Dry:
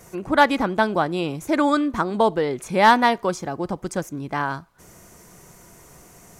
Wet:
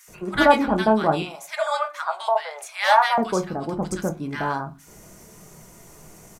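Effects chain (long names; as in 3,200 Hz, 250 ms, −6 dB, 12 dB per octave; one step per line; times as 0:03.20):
0:01.14–0:03.10: elliptic high-pass filter 640 Hz, stop band 50 dB
multiband delay without the direct sound highs, lows 80 ms, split 1,400 Hz
on a send at −5 dB: convolution reverb, pre-delay 5 ms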